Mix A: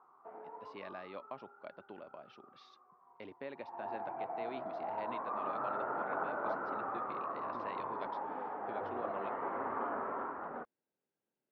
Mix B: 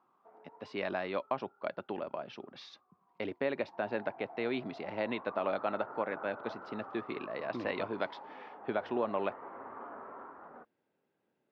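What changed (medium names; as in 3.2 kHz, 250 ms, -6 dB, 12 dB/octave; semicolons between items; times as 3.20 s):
speech +12.0 dB; background -8.5 dB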